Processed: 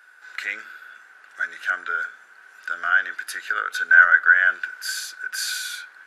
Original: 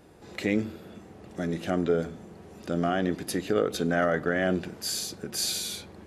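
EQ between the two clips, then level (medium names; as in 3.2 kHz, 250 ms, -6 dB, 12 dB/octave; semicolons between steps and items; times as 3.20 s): resonant high-pass 1.5 kHz, resonance Q 16; 0.0 dB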